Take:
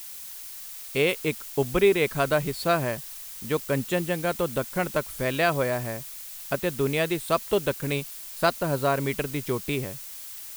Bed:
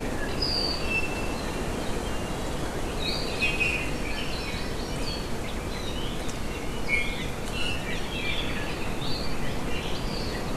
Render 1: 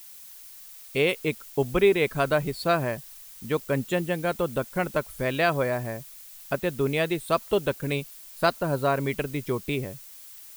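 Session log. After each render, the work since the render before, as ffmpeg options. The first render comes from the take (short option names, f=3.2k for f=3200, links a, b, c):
-af "afftdn=nr=7:nf=-40"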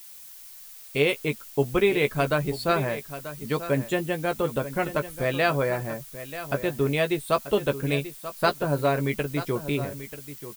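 -filter_complex "[0:a]asplit=2[a][b];[b]adelay=14,volume=-8dB[c];[a][c]amix=inputs=2:normalize=0,aecho=1:1:936:0.224"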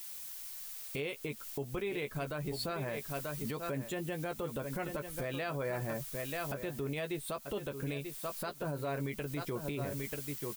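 -af "acompressor=threshold=-30dB:ratio=12,alimiter=level_in=3.5dB:limit=-24dB:level=0:latency=1:release=32,volume=-3.5dB"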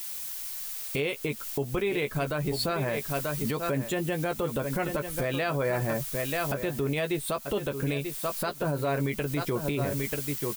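-af "volume=8.5dB"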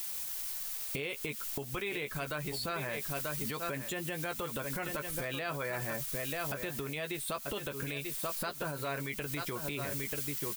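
-filter_complex "[0:a]acrossover=split=1100[a][b];[a]acompressor=threshold=-38dB:ratio=6[c];[b]alimiter=level_in=4.5dB:limit=-24dB:level=0:latency=1:release=52,volume=-4.5dB[d];[c][d]amix=inputs=2:normalize=0"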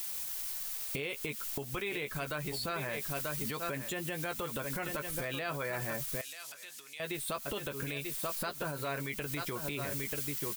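-filter_complex "[0:a]asettb=1/sr,asplit=3[a][b][c];[a]atrim=end=6.214[d];[b]atrim=start=6.21:end=7,asetpts=PTS-STARTPTS,afade=t=in:d=0.004:c=qsin,afade=t=out:st=0.786:d=0.004:c=qsin,bandpass=f=6.3k:t=q:w=0.8[e];[c]atrim=start=6.996[f];[d][e]acrossfade=d=0.004:c1=hsin:c2=qsin[g];[g][f]acrossfade=d=0.004:c1=qsin:c2=hsin"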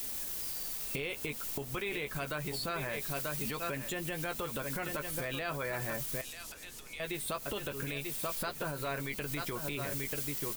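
-filter_complex "[1:a]volume=-25dB[a];[0:a][a]amix=inputs=2:normalize=0"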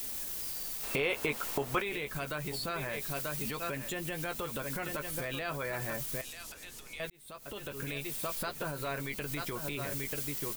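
-filter_complex "[0:a]asettb=1/sr,asplit=3[a][b][c];[a]atrim=end=0.834[d];[b]atrim=start=0.83:end=1.82,asetpts=PTS-STARTPTS,afade=t=in:d=0.004:c=qsin,afade=t=out:st=0.986:d=0.004:c=qsin,equalizer=f=950:w=0.4:g=11[e];[c]atrim=start=1.816[f];[d][e]acrossfade=d=0.004:c1=hsin:c2=qsin[g];[g][f]acrossfade=d=0.004:c1=qsin:c2=hsin,asplit=2[h][i];[h]atrim=end=7.1,asetpts=PTS-STARTPTS,afade=t=out:st=7.096:d=0.004:c=hsin[j];[i]atrim=start=7.1,asetpts=PTS-STARTPTS,afade=t=in:d=0.81[k];[j][k]concat=n=2:v=0:a=1"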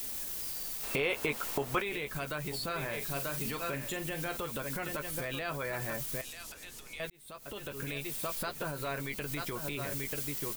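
-filter_complex "[0:a]asettb=1/sr,asplit=3[a][b][c];[a]atrim=end=2.664[d];[b]atrim=start=2.66:end=4.38,asetpts=PTS-STARTPTS,afade=t=in:d=0.004:c=qsin,afade=t=out:st=1.716:d=0.004:c=qsin,asplit=2[e][f];[f]adelay=43,volume=-9dB[g];[e][g]amix=inputs=2:normalize=0,atrim=end_sample=75852[h];[c]atrim=start=4.376[i];[d][h]acrossfade=d=0.004:c1=hsin:c2=qsin[j];[j][i]acrossfade=d=0.004:c1=qsin:c2=hsin"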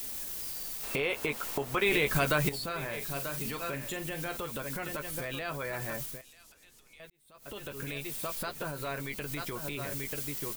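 -filter_complex "[0:a]asplit=5[a][b][c][d][e];[a]atrim=end=1.822[f];[b]atrim=start=1.818:end=2.492,asetpts=PTS-STARTPTS,volume=10dB[g];[c]atrim=start=2.488:end=6.2,asetpts=PTS-STARTPTS,afade=t=out:st=3.552:d=0.16:silence=0.266073[h];[d]atrim=start=6.2:end=7.33,asetpts=PTS-STARTPTS,volume=-11.5dB[i];[e]atrim=start=7.33,asetpts=PTS-STARTPTS,afade=t=in:d=0.16:silence=0.266073[j];[f][g]acrossfade=d=0.004:c1=hsin:c2=hsin[k];[h][i][j]concat=n=3:v=0:a=1[l];[k][l]acrossfade=d=0.004:c1=hsin:c2=hsin"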